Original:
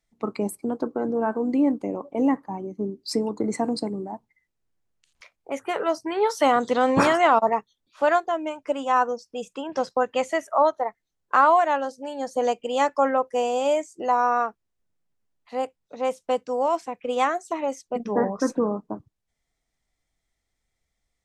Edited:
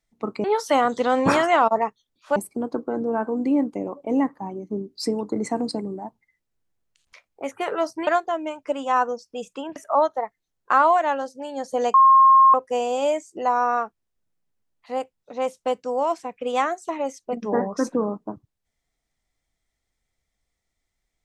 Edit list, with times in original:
6.15–8.07 move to 0.44
9.76–10.39 cut
12.57–13.17 bleep 1070 Hz -9.5 dBFS

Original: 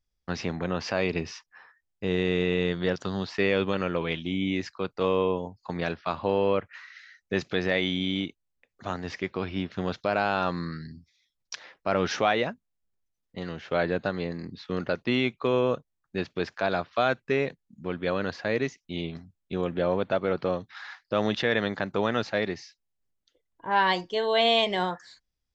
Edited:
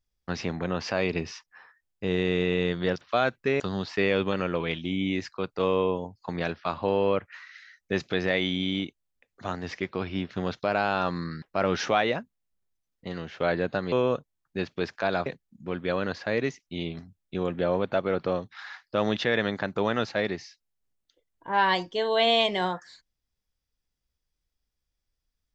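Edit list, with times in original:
10.83–11.73 cut
14.23–15.51 cut
16.85–17.44 move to 3.01

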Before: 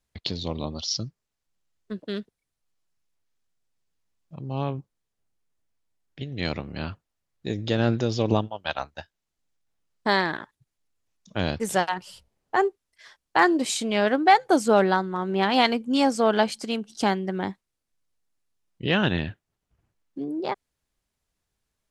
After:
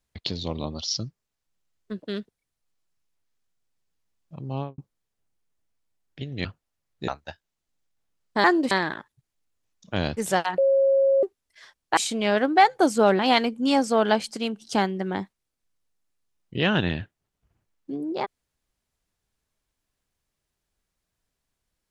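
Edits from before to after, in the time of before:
4.53–4.78 studio fade out
6.45–6.88 cut
7.51–8.78 cut
12.01–12.66 bleep 544 Hz -16 dBFS
13.4–13.67 move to 10.14
14.89–15.47 cut

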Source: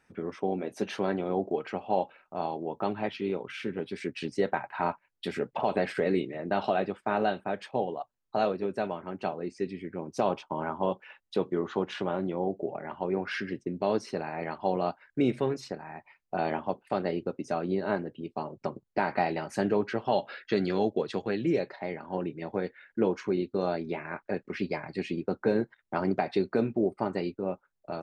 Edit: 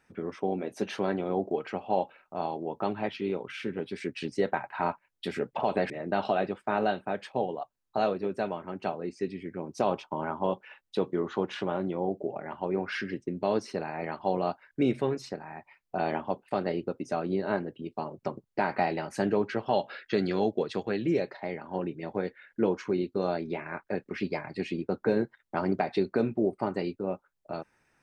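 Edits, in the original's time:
5.9–6.29 cut

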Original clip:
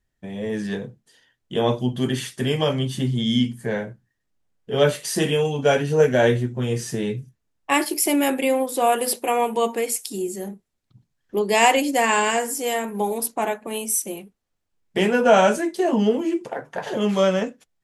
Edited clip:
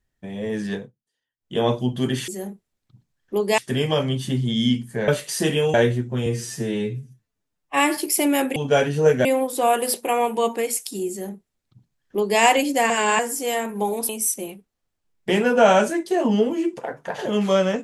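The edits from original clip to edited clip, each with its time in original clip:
0.74–1.56 dip -23.5 dB, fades 0.18 s
3.78–4.84 cut
5.5–6.19 move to 8.44
6.71–7.85 stretch 1.5×
10.29–11.59 copy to 2.28
12.09–12.38 reverse
13.28–13.77 cut

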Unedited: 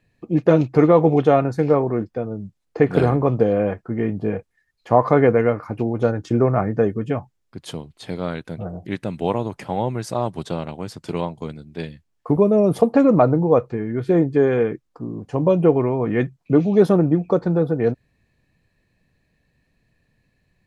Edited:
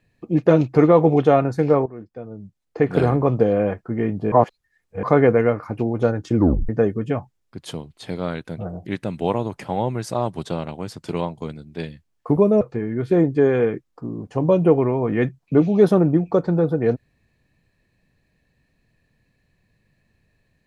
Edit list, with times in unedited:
1.86–3.18 fade in, from -18 dB
4.32–5.03 reverse
6.35 tape stop 0.34 s
12.61–13.59 cut

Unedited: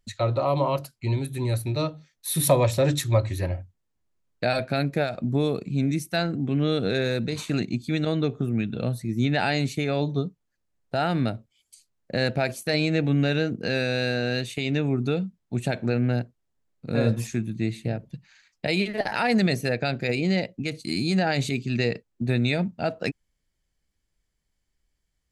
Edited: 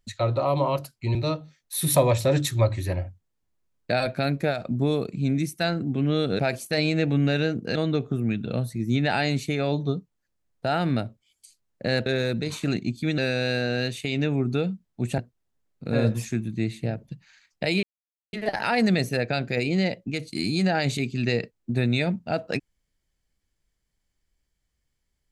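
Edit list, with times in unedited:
1.15–1.68 cut
6.92–8.04 swap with 12.35–13.71
15.71–16.2 cut
18.85 insert silence 0.50 s

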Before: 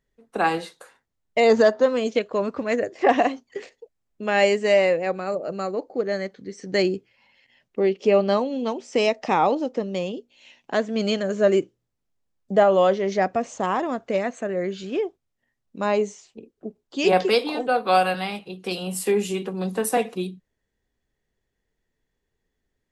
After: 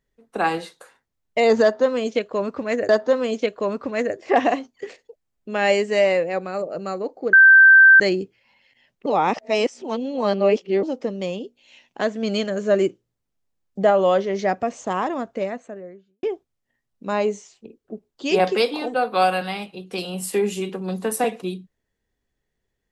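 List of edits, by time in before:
1.62–2.89 loop, 2 plays
6.06–6.73 bleep 1560 Hz -6.5 dBFS
7.79–9.56 reverse
13.84–14.96 studio fade out

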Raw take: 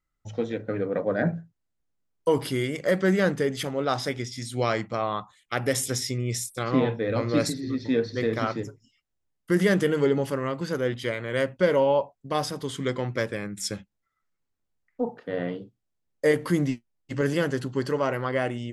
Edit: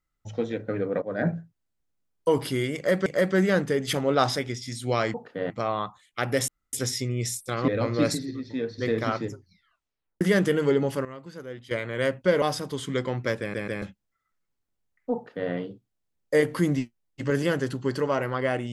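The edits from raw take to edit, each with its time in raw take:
1.02–1.27 fade in, from -13 dB
2.76–3.06 loop, 2 plays
3.58–4.06 gain +4 dB
5.82 insert room tone 0.25 s
6.77–7.03 cut
7.66–8.13 gain -6 dB
8.67 tape stop 0.89 s
10.4–11.06 gain -12 dB
11.77–12.33 cut
13.31 stutter in place 0.14 s, 3 plays
15.06–15.42 copy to 4.84

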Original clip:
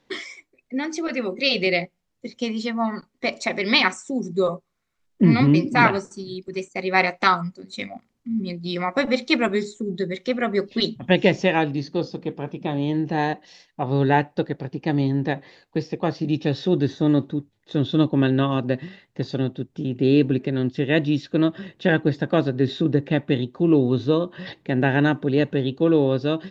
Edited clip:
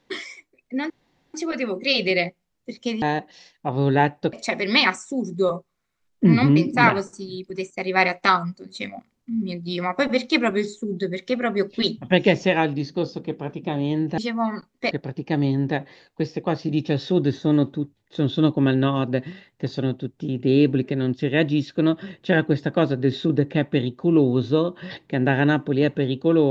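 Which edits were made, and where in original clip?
0.9 insert room tone 0.44 s
2.58–3.31 swap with 13.16–14.47

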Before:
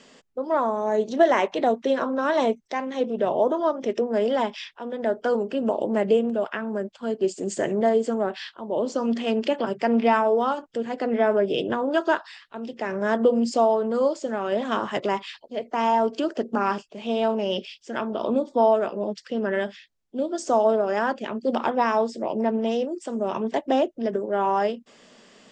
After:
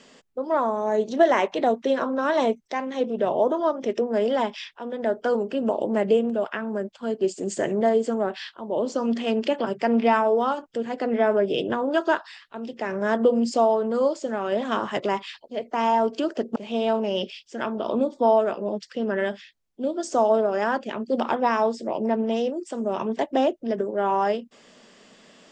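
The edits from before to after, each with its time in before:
16.56–16.91 cut

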